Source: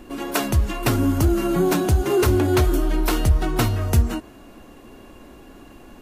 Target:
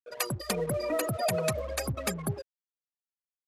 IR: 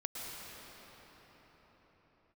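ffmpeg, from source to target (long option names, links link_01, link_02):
-af "crystalizer=i=4:c=0,afftfilt=real='re*gte(hypot(re,im),0.141)':imag='im*gte(hypot(re,im),0.141)':win_size=1024:overlap=0.75,highpass=frequency=120:poles=1,aresample=16000,aeval=exprs='sgn(val(0))*max(abs(val(0))-0.0106,0)':channel_layout=same,aresample=44100,asetrate=76440,aresample=44100,volume=-9dB"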